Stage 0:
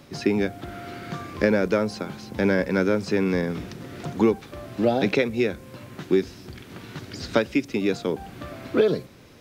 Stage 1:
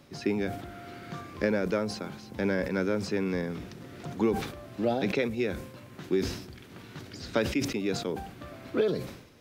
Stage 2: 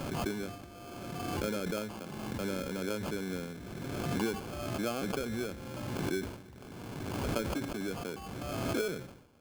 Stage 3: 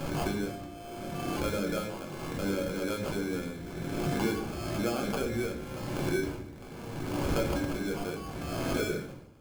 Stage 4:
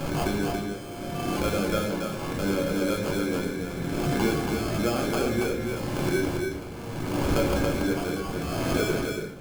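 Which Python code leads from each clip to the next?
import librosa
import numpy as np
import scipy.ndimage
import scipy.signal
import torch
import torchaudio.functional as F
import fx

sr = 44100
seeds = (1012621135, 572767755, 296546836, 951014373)

y1 = fx.sustainer(x, sr, db_per_s=76.0)
y1 = F.gain(torch.from_numpy(y1), -7.0).numpy()
y2 = fx.sample_hold(y1, sr, seeds[0], rate_hz=1900.0, jitter_pct=0)
y2 = fx.pre_swell(y2, sr, db_per_s=25.0)
y2 = F.gain(torch.from_numpy(y2), -8.0).numpy()
y3 = fx.room_shoebox(y2, sr, seeds[1], volume_m3=61.0, walls='mixed', distance_m=0.66)
y4 = y3 + 10.0 ** (-4.5 / 20.0) * np.pad(y3, (int(281 * sr / 1000.0), 0))[:len(y3)]
y4 = F.gain(torch.from_numpy(y4), 4.5).numpy()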